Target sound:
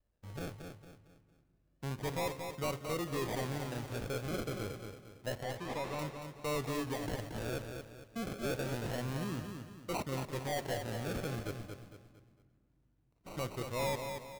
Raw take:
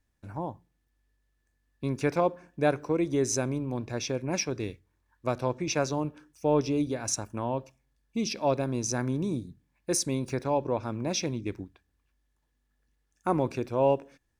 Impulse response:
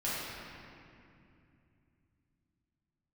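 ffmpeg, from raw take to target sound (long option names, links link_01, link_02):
-filter_complex "[0:a]aecho=1:1:1.7:0.37,acrusher=samples=37:mix=1:aa=0.000001:lfo=1:lforange=22.2:lforate=0.28,asoftclip=type=tanh:threshold=-26dB,asettb=1/sr,asplit=3[link_01][link_02][link_03];[link_01]atrim=end=5.434[link_04];[link_02]atrim=start=5.43:end=5.99,asetpts=PTS-STARTPTS,afade=type=in:duration=0.004:curve=qsin,afade=type=out:start_time=0.556:duration=0.004:curve=qsin,asplit=2[link_05][link_06];[link_06]highpass=frequency=720:poles=1,volume=9dB,asoftclip=type=tanh:threshold=-26dB[link_07];[link_05][link_07]amix=inputs=2:normalize=0,lowpass=frequency=3900:poles=1,volume=-6dB[link_08];[link_03]atrim=start=5.986[link_09];[link_04][link_08]acrossfade=duration=0.004:curve1=hsin:curve2=qsin[link_10];[link_10][link_09]acrossfade=duration=0.004:curve1=qsin:curve2=hsin,asplit=3[link_11][link_12][link_13];[link_11]afade=type=out:start_time=11.55:duration=0.02[link_14];[link_12]aeval=exprs='0.0141*(abs(mod(val(0)/0.0141+3,4)-2)-1)':channel_layout=same,afade=type=in:start_time=11.55:duration=0.02,afade=type=out:start_time=13.36:duration=0.02[link_15];[link_13]afade=type=in:start_time=13.36:duration=0.02[link_16];[link_14][link_15][link_16]amix=inputs=3:normalize=0,aecho=1:1:228|456|684|912:0.473|0.18|0.0683|0.026,asplit=2[link_17][link_18];[1:a]atrim=start_sample=2205[link_19];[link_18][link_19]afir=irnorm=-1:irlink=0,volume=-26.5dB[link_20];[link_17][link_20]amix=inputs=2:normalize=0,volume=-6dB"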